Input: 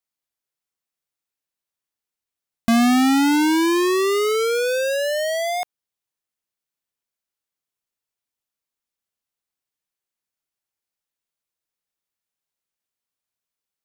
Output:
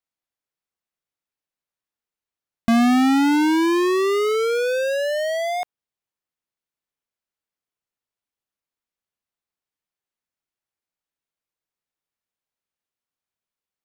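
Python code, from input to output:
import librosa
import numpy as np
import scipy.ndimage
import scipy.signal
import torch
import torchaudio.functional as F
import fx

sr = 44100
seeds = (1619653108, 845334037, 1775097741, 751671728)

y = fx.high_shelf(x, sr, hz=4200.0, db=-8.5)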